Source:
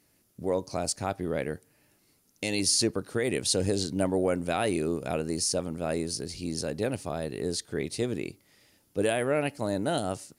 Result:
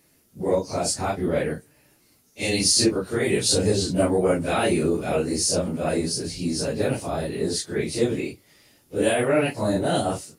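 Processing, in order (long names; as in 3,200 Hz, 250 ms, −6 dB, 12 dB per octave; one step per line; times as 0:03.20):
random phases in long frames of 100 ms
level +6 dB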